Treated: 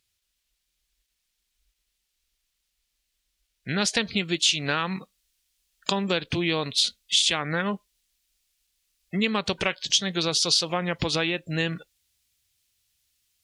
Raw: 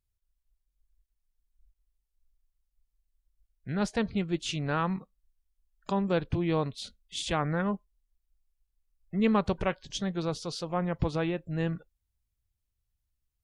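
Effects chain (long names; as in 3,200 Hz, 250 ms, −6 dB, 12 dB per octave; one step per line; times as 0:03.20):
meter weighting curve D
downward compressor 6 to 1, threshold −30 dBFS, peak gain reduction 11 dB
high-shelf EQ 4,900 Hz +3.5 dB, from 0:03.78 +10 dB
level +7.5 dB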